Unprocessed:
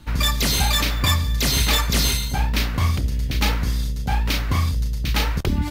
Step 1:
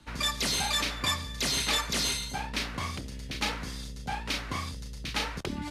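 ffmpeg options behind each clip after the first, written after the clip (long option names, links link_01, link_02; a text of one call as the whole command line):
ffmpeg -i in.wav -filter_complex "[0:a]lowpass=frequency=11000:width=0.5412,lowpass=frequency=11000:width=1.3066,lowshelf=frequency=180:gain=-8,acrossover=split=140[link_01][link_02];[link_01]alimiter=level_in=6.5dB:limit=-24dB:level=0:latency=1:release=102,volume=-6.5dB[link_03];[link_03][link_02]amix=inputs=2:normalize=0,volume=-6.5dB" out.wav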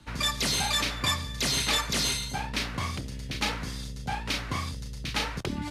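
ffmpeg -i in.wav -af "equalizer=frequency=120:width_type=o:width=0.74:gain=5,volume=1.5dB" out.wav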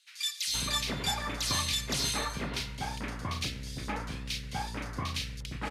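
ffmpeg -i in.wav -filter_complex "[0:a]acrossover=split=2200[link_01][link_02];[link_01]adelay=470[link_03];[link_03][link_02]amix=inputs=2:normalize=0,volume=-3dB" out.wav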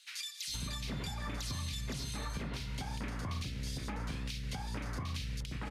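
ffmpeg -i in.wav -filter_complex "[0:a]acrossover=split=230[link_01][link_02];[link_02]acompressor=threshold=-41dB:ratio=6[link_03];[link_01][link_03]amix=inputs=2:normalize=0,alimiter=level_in=11.5dB:limit=-24dB:level=0:latency=1:release=356,volume=-11.5dB,volume=6dB" out.wav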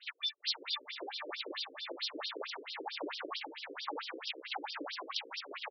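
ffmpeg -i in.wav -filter_complex "[0:a]acrossover=split=6600[link_01][link_02];[link_02]acrusher=bits=5:mode=log:mix=0:aa=0.000001[link_03];[link_01][link_03]amix=inputs=2:normalize=0,aecho=1:1:568:0.531,afftfilt=real='re*between(b*sr/1024,370*pow(4200/370,0.5+0.5*sin(2*PI*4.5*pts/sr))/1.41,370*pow(4200/370,0.5+0.5*sin(2*PI*4.5*pts/sr))*1.41)':imag='im*between(b*sr/1024,370*pow(4200/370,0.5+0.5*sin(2*PI*4.5*pts/sr))/1.41,370*pow(4200/370,0.5+0.5*sin(2*PI*4.5*pts/sr))*1.41)':win_size=1024:overlap=0.75,volume=10dB" out.wav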